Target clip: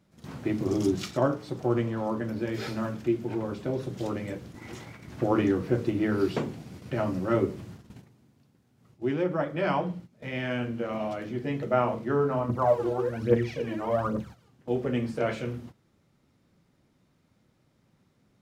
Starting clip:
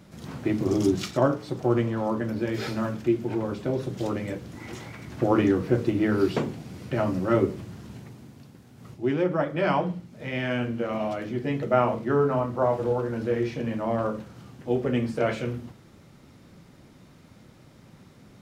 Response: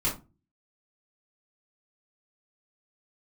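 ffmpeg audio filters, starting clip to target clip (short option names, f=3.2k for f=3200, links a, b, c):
-filter_complex "[0:a]asplit=3[a][b][c];[a]afade=t=out:st=12.48:d=0.02[d];[b]aphaser=in_gain=1:out_gain=1:delay=3.2:decay=0.69:speed=1.2:type=triangular,afade=t=in:st=12.48:d=0.02,afade=t=out:st=14.48:d=0.02[e];[c]afade=t=in:st=14.48:d=0.02[f];[d][e][f]amix=inputs=3:normalize=0,agate=range=-12dB:threshold=-40dB:ratio=16:detection=peak,volume=-3dB"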